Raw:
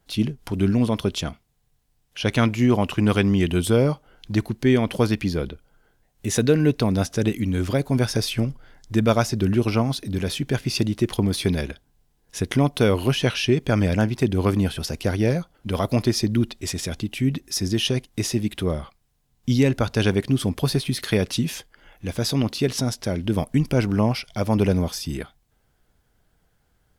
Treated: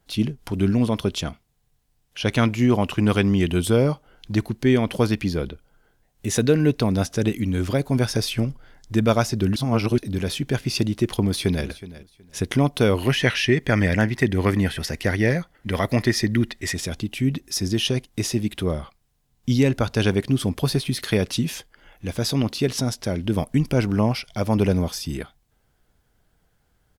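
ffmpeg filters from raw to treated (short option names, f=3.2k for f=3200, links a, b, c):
-filter_complex "[0:a]asplit=2[a][b];[b]afade=t=in:st=11.2:d=0.01,afade=t=out:st=11.66:d=0.01,aecho=0:1:370|740:0.149624|0.0299247[c];[a][c]amix=inputs=2:normalize=0,asettb=1/sr,asplit=3[d][e][f];[d]atrim=end=13.024[g];[e]atrim=start=13.02:end=16.75,asetpts=PTS-STARTPTS,afade=t=in:d=0.004:c=qsin,afade=t=out:st=3.726:d=0.004:c=qsin,equalizer=f=1.9k:t=o:w=0.35:g=15[h];[f]atrim=start=16.746[i];[g][h]acrossfade=d=0.004:c1=hsin:c2=qsin[j];[j][i]acrossfade=d=0.004:c1=qsin:c2=hsin,asplit=3[k][l][m];[k]atrim=end=9.562[n];[l]atrim=start=9.558:end=9.982,asetpts=PTS-STARTPTS,areverse[o];[m]atrim=start=9.978[p];[n][o]acrossfade=d=0.004:c1=hsin:c2=hsin[q];[q][p]acrossfade=d=0.004:c1=hsin:c2=hsin"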